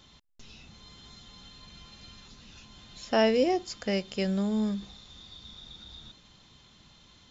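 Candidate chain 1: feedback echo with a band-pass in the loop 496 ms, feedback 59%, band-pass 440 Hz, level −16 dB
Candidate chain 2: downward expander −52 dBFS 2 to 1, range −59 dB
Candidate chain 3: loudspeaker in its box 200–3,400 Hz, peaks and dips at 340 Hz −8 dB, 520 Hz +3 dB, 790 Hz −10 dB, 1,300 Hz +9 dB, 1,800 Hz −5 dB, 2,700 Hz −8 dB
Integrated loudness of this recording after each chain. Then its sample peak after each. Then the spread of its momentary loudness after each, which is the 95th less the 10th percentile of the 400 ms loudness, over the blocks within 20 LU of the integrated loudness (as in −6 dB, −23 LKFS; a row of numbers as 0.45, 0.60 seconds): −28.0, −28.0, −30.5 LKFS; −14.5, −14.5, −13.0 dBFS; 21, 22, 10 LU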